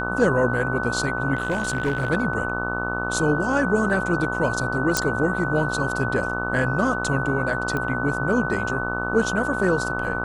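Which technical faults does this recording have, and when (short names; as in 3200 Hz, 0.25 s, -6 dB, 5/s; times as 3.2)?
buzz 60 Hz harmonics 25 -29 dBFS
tone 1500 Hz -28 dBFS
1.35–2.1 clipped -17.5 dBFS
4.97 pop -4 dBFS
7.77 pop -14 dBFS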